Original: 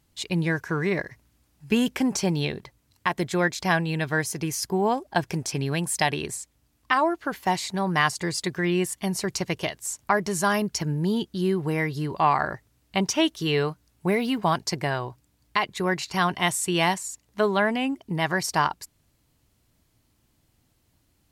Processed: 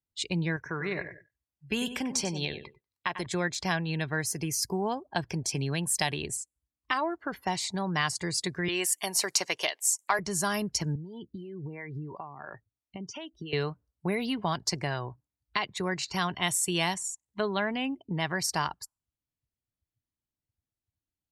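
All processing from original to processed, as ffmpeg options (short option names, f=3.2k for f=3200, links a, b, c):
-filter_complex "[0:a]asettb=1/sr,asplit=3[a][b][c];[a]atrim=end=0.564[d];[b]atrim=start=0.56:end=3.26,asetpts=PTS-STARTPTS,afade=t=in:d=0.004:c=qsin,afade=t=out:st=2.696:d=0.004:c=qsin,equalizer=f=160:t=o:w=2.7:g=-6,aecho=1:1:95|190|285:0.282|0.0846|0.0254,atrim=end_sample=119070[e];[c]atrim=start=3.256[f];[d][e]acrossfade=d=0.004:c1=hsin:c2=qsin[g];[g][f]acrossfade=d=0.004:c1=qsin:c2=hsin,asettb=1/sr,asplit=3[h][i][j];[h]atrim=end=8.684[k];[i]atrim=start=8.68:end=10.19,asetpts=PTS-STARTPTS,afade=t=in:d=0.004:c=qsin,afade=t=out:st=1.506:d=0.004:c=qsin,highpass=550,acontrast=39[l];[j]atrim=start=10.186[m];[k][l]acrossfade=d=0.004:c1=hsin:c2=qsin[n];[n][m]acrossfade=d=0.004:c1=qsin:c2=hsin,asettb=1/sr,asplit=3[o][p][q];[o]atrim=end=10.954[r];[p]atrim=start=10.95:end=13.53,asetpts=PTS-STARTPTS,afade=t=in:d=0.004:c=qsin,afade=t=out:st=2.576:d=0.004:c=qsin,acompressor=threshold=-31dB:ratio=12:attack=3.2:release=140:knee=1:detection=peak,acrossover=split=430[s][t];[s]aeval=exprs='val(0)*(1-0.7/2+0.7/2*cos(2*PI*2.9*n/s))':c=same[u];[t]aeval=exprs='val(0)*(1-0.7/2-0.7/2*cos(2*PI*2.9*n/s))':c=same[v];[u][v]amix=inputs=2:normalize=0,adynamicequalizer=threshold=0.00178:dfrequency=2600:dqfactor=0.7:tfrequency=2600:tqfactor=0.7:attack=5:release=100:ratio=0.375:range=2.5:mode=cutabove:tftype=highshelf[w];[q]atrim=start=13.526[x];[r][w]acrossfade=d=0.004:c1=hsin:c2=qsin[y];[y][x]acrossfade=d=0.004:c1=qsin:c2=hsin,afftdn=nr=28:nf=-45,acrossover=split=120|3000[z][aa][ab];[aa]acompressor=threshold=-40dB:ratio=1.5[ac];[z][ac][ab]amix=inputs=3:normalize=0"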